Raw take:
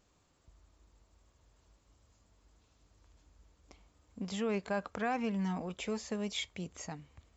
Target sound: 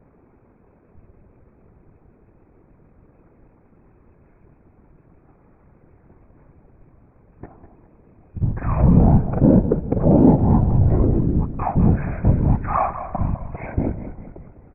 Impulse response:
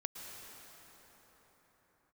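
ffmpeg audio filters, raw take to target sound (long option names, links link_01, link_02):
-filter_complex "[0:a]lowpass=2400,lowshelf=frequency=150:gain=-11.5,asetrate=14685,aresample=44100,apsyclip=27dB,afftfilt=real='hypot(re,im)*cos(2*PI*random(0))':imag='hypot(re,im)*sin(2*PI*random(1))':win_size=512:overlap=0.75,atempo=1.5,asplit=7[link_01][link_02][link_03][link_04][link_05][link_06][link_07];[link_02]adelay=201,afreqshift=-34,volume=-11dB[link_08];[link_03]adelay=402,afreqshift=-68,volume=-16.7dB[link_09];[link_04]adelay=603,afreqshift=-102,volume=-22.4dB[link_10];[link_05]adelay=804,afreqshift=-136,volume=-28dB[link_11];[link_06]adelay=1005,afreqshift=-170,volume=-33.7dB[link_12];[link_07]adelay=1206,afreqshift=-204,volume=-39.4dB[link_13];[link_01][link_08][link_09][link_10][link_11][link_12][link_13]amix=inputs=7:normalize=0,volume=1.5dB"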